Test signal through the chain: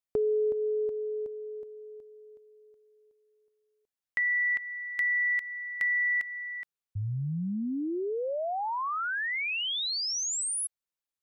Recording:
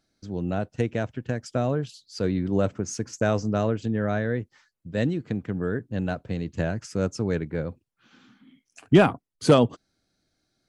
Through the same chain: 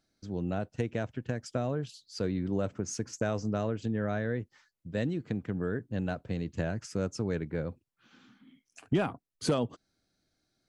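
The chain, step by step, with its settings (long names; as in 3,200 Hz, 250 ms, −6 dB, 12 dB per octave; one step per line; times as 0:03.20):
downward compressor 2.5 to 1, threshold −24 dBFS
level −3.5 dB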